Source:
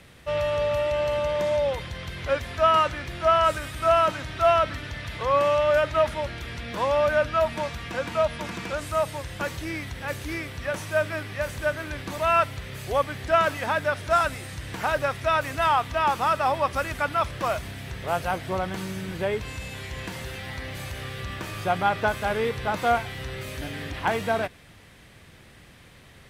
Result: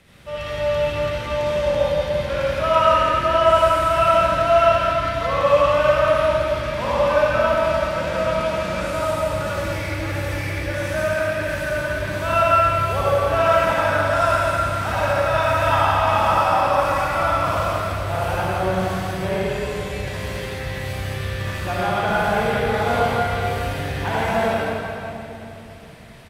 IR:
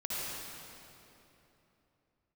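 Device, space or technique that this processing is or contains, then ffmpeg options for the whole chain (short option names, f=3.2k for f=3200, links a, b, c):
cave: -filter_complex "[0:a]aecho=1:1:172:0.376[a];[1:a]atrim=start_sample=2205[b];[a][b]afir=irnorm=-1:irlink=0"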